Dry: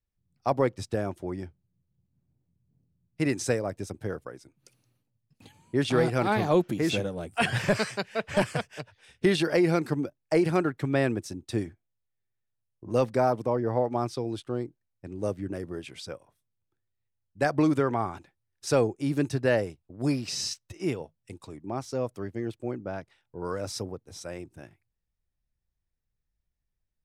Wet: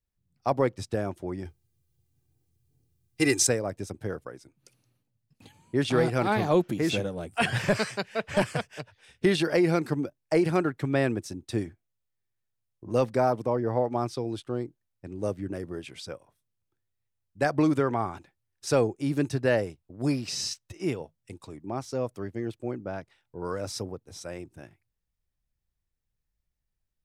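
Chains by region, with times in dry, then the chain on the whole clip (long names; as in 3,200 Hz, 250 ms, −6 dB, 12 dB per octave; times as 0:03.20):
0:01.45–0:03.47: high-shelf EQ 3,100 Hz +11.5 dB + comb filter 2.5 ms, depth 85%
whole clip: no processing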